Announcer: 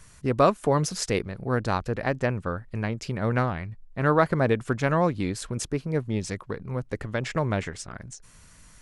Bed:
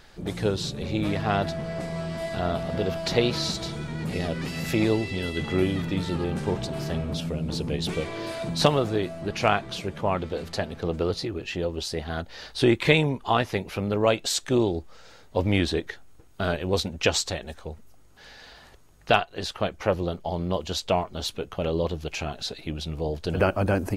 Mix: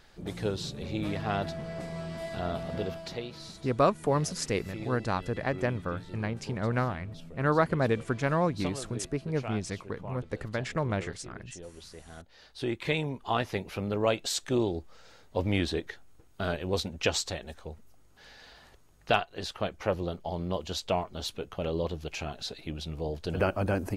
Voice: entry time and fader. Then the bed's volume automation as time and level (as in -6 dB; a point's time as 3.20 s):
3.40 s, -4.0 dB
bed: 2.82 s -6 dB
3.29 s -17.5 dB
12.08 s -17.5 dB
13.46 s -5 dB